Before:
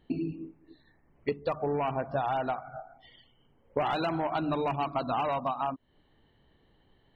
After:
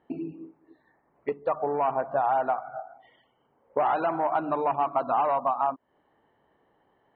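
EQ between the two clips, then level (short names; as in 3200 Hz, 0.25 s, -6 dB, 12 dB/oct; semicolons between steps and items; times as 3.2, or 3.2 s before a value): band-pass 920 Hz, Q 0.98; air absorption 380 m; +8.0 dB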